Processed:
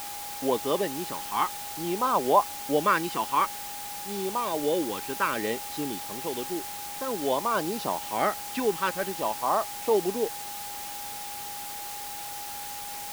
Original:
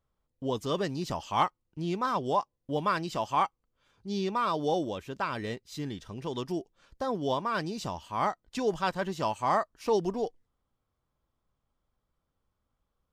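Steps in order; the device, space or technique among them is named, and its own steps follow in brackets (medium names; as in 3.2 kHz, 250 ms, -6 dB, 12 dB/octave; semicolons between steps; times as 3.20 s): shortwave radio (band-pass 290–3000 Hz; tremolo 0.37 Hz, depth 54%; LFO notch sine 0.55 Hz 600–2100 Hz; whistle 820 Hz -48 dBFS; white noise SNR 9 dB); trim +8.5 dB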